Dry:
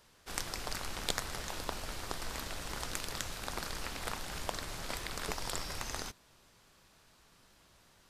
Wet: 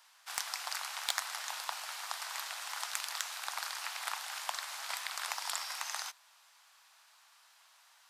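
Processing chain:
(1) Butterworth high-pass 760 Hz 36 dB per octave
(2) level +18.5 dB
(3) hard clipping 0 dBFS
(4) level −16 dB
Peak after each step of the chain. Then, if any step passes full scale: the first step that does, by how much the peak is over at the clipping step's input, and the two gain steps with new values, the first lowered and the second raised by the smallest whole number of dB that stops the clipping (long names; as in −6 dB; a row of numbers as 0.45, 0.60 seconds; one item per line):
−12.0, +6.5, 0.0, −16.0 dBFS
step 2, 6.5 dB
step 2 +11.5 dB, step 4 −9 dB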